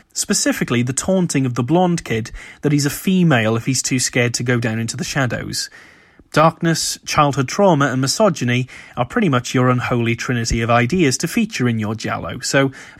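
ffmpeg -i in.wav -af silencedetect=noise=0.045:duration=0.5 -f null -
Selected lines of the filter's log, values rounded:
silence_start: 5.66
silence_end: 6.34 | silence_duration: 0.68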